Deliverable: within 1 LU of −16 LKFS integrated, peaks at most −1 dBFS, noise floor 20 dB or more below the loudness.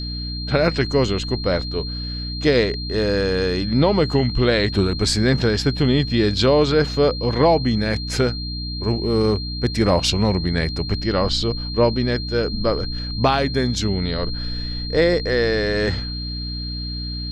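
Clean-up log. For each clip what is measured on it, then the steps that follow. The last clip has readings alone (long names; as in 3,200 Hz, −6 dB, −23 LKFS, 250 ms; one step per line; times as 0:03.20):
mains hum 60 Hz; hum harmonics up to 300 Hz; level of the hum −26 dBFS; interfering tone 4,200 Hz; level of the tone −30 dBFS; integrated loudness −20.5 LKFS; sample peak −3.5 dBFS; target loudness −16.0 LKFS
→ hum removal 60 Hz, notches 5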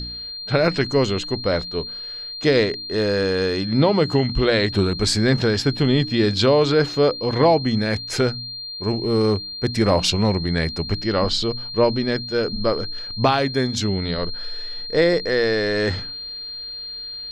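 mains hum none found; interfering tone 4,200 Hz; level of the tone −30 dBFS
→ notch filter 4,200 Hz, Q 30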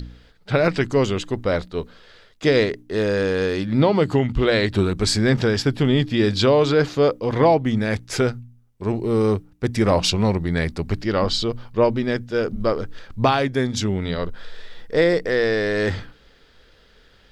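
interfering tone none found; integrated loudness −21.0 LKFS; sample peak −5.0 dBFS; target loudness −16.0 LKFS
→ level +5 dB
brickwall limiter −1 dBFS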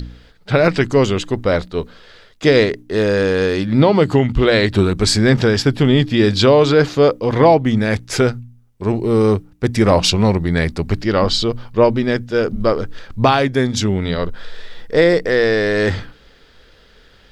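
integrated loudness −16.0 LKFS; sample peak −1.0 dBFS; background noise floor −49 dBFS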